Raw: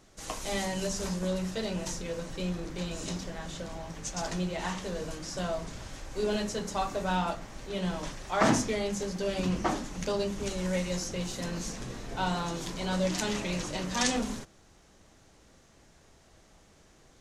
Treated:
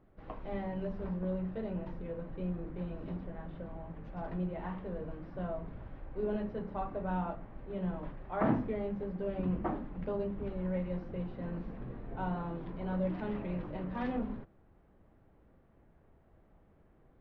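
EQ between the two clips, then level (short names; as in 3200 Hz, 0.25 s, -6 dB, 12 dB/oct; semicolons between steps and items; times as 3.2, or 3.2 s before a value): air absorption 400 m; tape spacing loss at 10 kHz 40 dB; -2.0 dB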